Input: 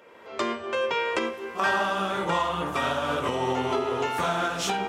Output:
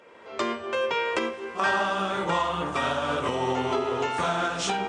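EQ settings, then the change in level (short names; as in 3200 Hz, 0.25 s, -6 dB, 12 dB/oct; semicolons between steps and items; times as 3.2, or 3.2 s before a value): brick-wall FIR low-pass 9600 Hz; 0.0 dB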